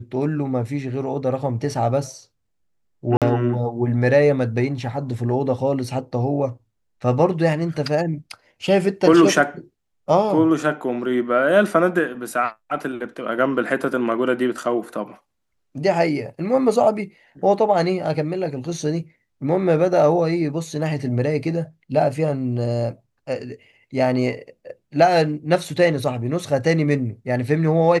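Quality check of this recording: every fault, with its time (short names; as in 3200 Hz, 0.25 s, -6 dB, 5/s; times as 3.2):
3.17–3.22 gap 47 ms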